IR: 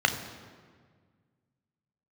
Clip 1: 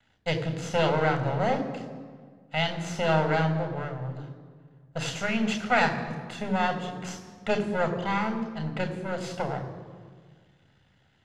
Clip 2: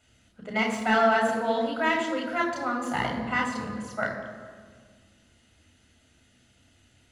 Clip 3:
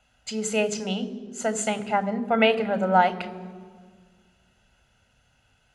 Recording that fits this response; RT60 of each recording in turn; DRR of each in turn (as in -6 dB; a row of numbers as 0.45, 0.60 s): 1; 1.7, 1.7, 1.7 s; 6.0, 0.5, 12.5 dB